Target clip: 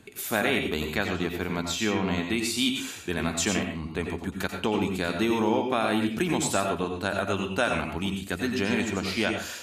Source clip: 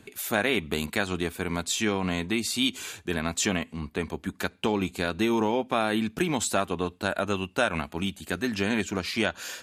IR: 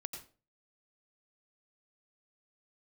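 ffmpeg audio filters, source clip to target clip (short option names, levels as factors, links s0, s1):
-filter_complex "[0:a]asettb=1/sr,asplit=3[s0][s1][s2];[s0]atrim=end=0.664[s3];[s1]atrim=start=0.66:end=2.25,asetpts=PTS-STARTPTS,afade=t=in:d=0.004:c=qsin,afade=t=out:st=1.586:d=0.004:c=qsin,equalizer=f=9300:t=o:w=0.46:g=-13[s4];[s2]atrim=start=2.246[s5];[s3][s4]acrossfade=d=0.004:c1=hsin:c2=qsin[s6];[s6][s5]acrossfade=d=0.004:c1=qsin:c2=hsin[s7];[1:a]atrim=start_sample=2205[s8];[s7][s8]afir=irnorm=-1:irlink=0,volume=1.33"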